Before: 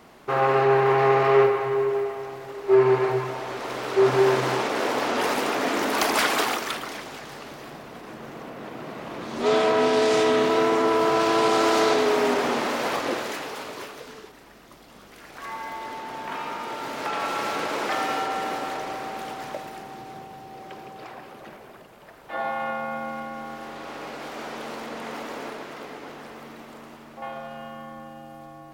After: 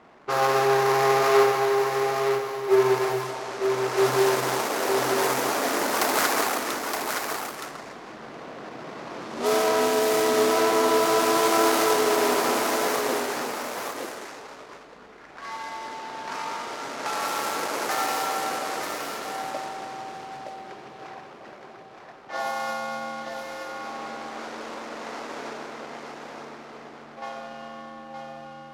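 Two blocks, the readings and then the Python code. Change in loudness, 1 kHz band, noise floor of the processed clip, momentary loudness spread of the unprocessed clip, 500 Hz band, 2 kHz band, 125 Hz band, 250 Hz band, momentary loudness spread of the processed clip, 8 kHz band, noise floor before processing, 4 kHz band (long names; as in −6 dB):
−1.0 dB, 0.0 dB, −45 dBFS, 21 LU, −1.0 dB, 0.0 dB, −5.0 dB, −2.0 dB, 19 LU, +6.0 dB, −48 dBFS, +0.5 dB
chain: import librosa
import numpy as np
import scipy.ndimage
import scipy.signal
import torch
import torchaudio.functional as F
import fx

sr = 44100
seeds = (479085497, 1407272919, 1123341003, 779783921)

p1 = scipy.ndimage.median_filter(x, 15, mode='constant')
p2 = fx.riaa(p1, sr, side='recording')
p3 = fx.env_lowpass(p2, sr, base_hz=2800.0, full_db=-23.5)
p4 = fx.low_shelf(p3, sr, hz=170.0, db=8.5)
y = p4 + fx.echo_single(p4, sr, ms=919, db=-5.5, dry=0)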